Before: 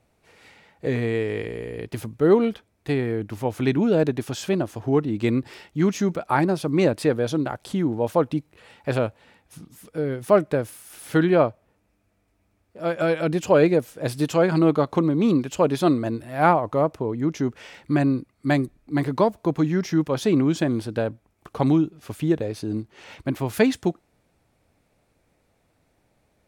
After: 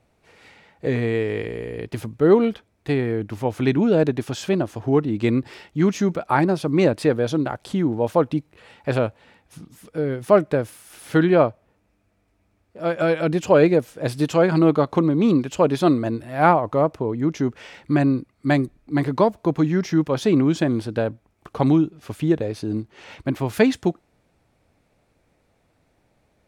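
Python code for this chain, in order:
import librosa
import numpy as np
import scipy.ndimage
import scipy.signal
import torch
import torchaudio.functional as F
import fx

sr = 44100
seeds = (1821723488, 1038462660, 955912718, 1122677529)

y = fx.high_shelf(x, sr, hz=9000.0, db=-7.5)
y = y * librosa.db_to_amplitude(2.0)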